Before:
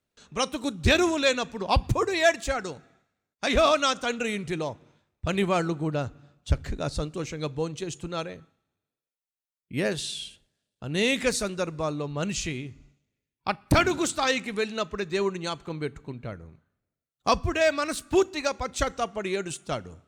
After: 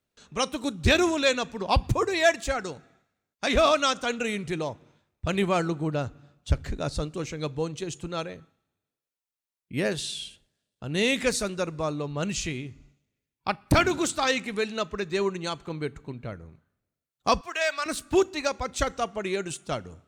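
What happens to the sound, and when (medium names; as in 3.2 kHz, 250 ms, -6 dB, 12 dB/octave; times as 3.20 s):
17.41–17.86 s: high-pass 870 Hz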